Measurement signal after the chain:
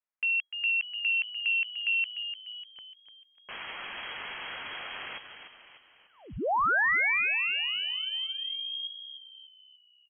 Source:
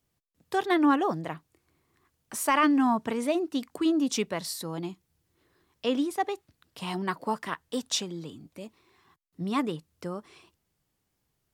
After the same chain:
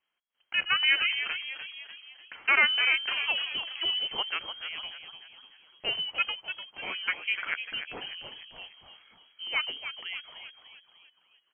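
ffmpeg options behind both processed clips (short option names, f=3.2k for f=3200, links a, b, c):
-filter_complex "[0:a]equalizer=f=1.8k:w=0.32:g=12,asplit=7[a][b][c][d][e][f][g];[b]adelay=297,afreqshift=-110,volume=-9dB[h];[c]adelay=594,afreqshift=-220,volume=-15.2dB[i];[d]adelay=891,afreqshift=-330,volume=-21.4dB[j];[e]adelay=1188,afreqshift=-440,volume=-27.6dB[k];[f]adelay=1485,afreqshift=-550,volume=-33.8dB[l];[g]adelay=1782,afreqshift=-660,volume=-40dB[m];[a][h][i][j][k][l][m]amix=inputs=7:normalize=0,lowpass=f=2.8k:t=q:w=0.5098,lowpass=f=2.8k:t=q:w=0.6013,lowpass=f=2.8k:t=q:w=0.9,lowpass=f=2.8k:t=q:w=2.563,afreqshift=-3300,volume=-9dB"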